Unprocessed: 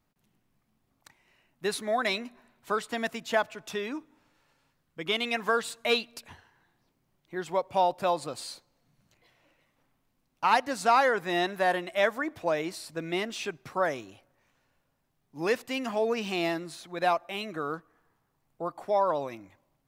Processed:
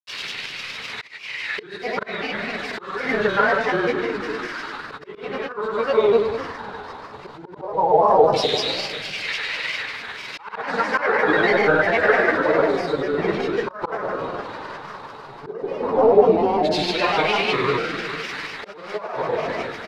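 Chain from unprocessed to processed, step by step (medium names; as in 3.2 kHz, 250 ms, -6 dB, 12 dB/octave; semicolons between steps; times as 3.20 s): zero-crossing glitches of -20 dBFS; frequency-shifting echo 81 ms, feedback 56%, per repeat -87 Hz, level -18.5 dB; in parallel at -2.5 dB: level held to a coarse grid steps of 16 dB; on the sum: LFO low-pass saw down 0.12 Hz 820–2600 Hz; simulated room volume 2500 m³, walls mixed, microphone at 4.8 m; slow attack 483 ms; peaking EQ 4.5 kHz +9 dB 0.55 oct; granulator, pitch spread up and down by 3 st; small resonant body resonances 430/3800 Hz, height 8 dB; trim -2 dB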